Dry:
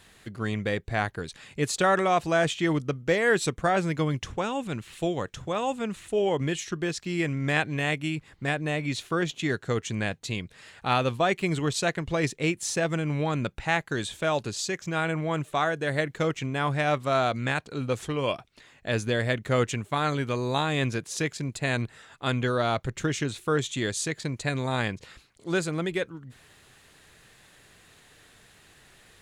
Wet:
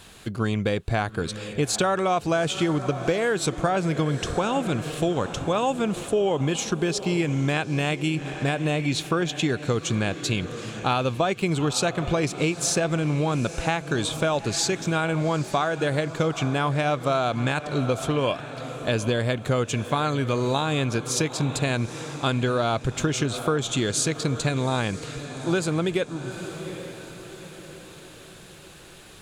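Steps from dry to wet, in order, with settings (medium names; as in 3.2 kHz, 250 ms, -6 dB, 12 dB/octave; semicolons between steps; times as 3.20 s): on a send: echo that smears into a reverb 835 ms, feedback 46%, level -15 dB; on the sum: compression, threshold -28 dBFS, peak gain reduction 10.5 dB; peaking EQ 1.9 kHz -10 dB 0.26 oct; trim +8.5 dB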